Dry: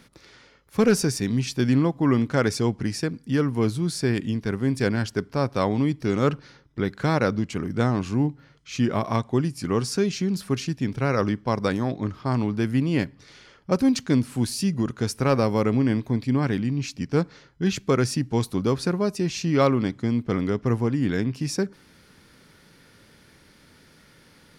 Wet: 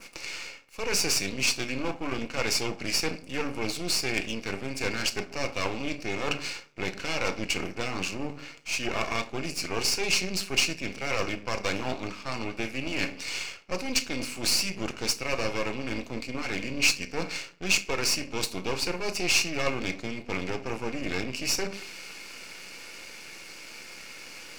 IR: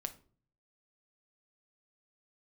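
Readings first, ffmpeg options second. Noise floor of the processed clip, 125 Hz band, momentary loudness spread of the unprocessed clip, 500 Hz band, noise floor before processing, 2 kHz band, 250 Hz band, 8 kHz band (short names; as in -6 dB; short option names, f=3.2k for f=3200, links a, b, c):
-46 dBFS, -15.5 dB, 6 LU, -8.0 dB, -55 dBFS, +4.0 dB, -12.5 dB, +5.5 dB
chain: -filter_complex "[0:a]areverse,acompressor=threshold=-32dB:ratio=8,areverse,highpass=370,adynamicequalizer=threshold=0.00178:dfrequency=3400:dqfactor=1:tfrequency=3400:tqfactor=1:attack=5:release=100:ratio=0.375:range=3:mode=boostabove:tftype=bell,aeval=exprs='0.0944*(cos(1*acos(clip(val(0)/0.0944,-1,1)))-cos(1*PI/2))+0.00473*(cos(2*acos(clip(val(0)/0.0944,-1,1)))-cos(2*PI/2))+0.00266*(cos(3*acos(clip(val(0)/0.0944,-1,1)))-cos(3*PI/2))':c=same,asplit=2[a][b];[b]aeval=exprs='0.106*sin(PI/2*2.51*val(0)/0.106)':c=same,volume=-3dB[c];[a][c]amix=inputs=2:normalize=0[d];[1:a]atrim=start_sample=2205[e];[d][e]afir=irnorm=-1:irlink=0,aeval=exprs='max(val(0),0)':c=same,superequalizer=12b=3.16:14b=2:15b=2,volume=3.5dB"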